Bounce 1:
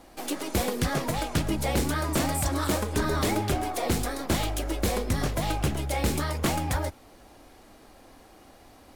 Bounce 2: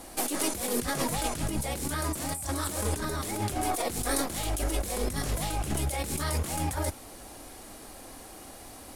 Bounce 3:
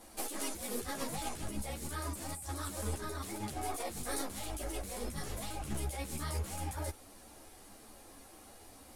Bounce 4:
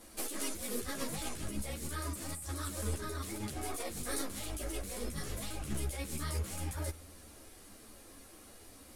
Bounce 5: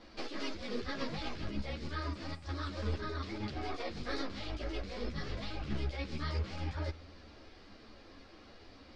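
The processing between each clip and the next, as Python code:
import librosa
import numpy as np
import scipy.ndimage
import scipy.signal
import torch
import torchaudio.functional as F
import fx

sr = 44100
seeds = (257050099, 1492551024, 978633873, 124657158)

y1 = fx.peak_eq(x, sr, hz=10000.0, db=12.5, octaves=1.2)
y1 = fx.over_compress(y1, sr, threshold_db=-31.0, ratio=-1.0)
y2 = fx.ensemble(y1, sr)
y2 = y2 * librosa.db_to_amplitude(-6.0)
y3 = fx.peak_eq(y2, sr, hz=810.0, db=-8.0, octaves=0.54)
y3 = fx.rev_spring(y3, sr, rt60_s=2.0, pass_ms=(49,), chirp_ms=50, drr_db=19.5)
y3 = y3 * librosa.db_to_amplitude(1.0)
y4 = scipy.signal.sosfilt(scipy.signal.cheby1(4, 1.0, 4900.0, 'lowpass', fs=sr, output='sos'), y3)
y4 = y4 * librosa.db_to_amplitude(2.0)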